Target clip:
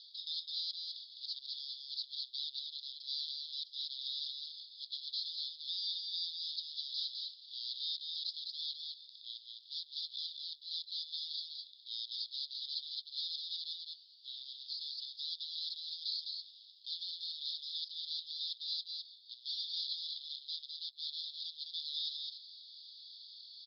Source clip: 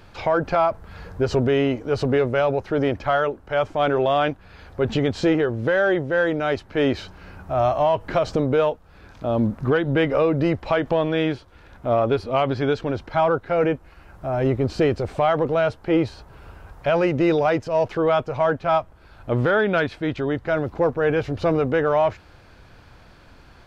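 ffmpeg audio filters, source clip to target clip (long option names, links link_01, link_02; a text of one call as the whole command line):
ffmpeg -i in.wav -af "areverse,acompressor=threshold=-29dB:ratio=8,areverse,aeval=exprs='0.0141*(abs(mod(val(0)/0.0141+3,4)-2)-1)':channel_layout=same,afreqshift=65,asuperpass=centerf=4200:order=12:qfactor=2.5,aecho=1:1:207:0.631,volume=10.5dB" out.wav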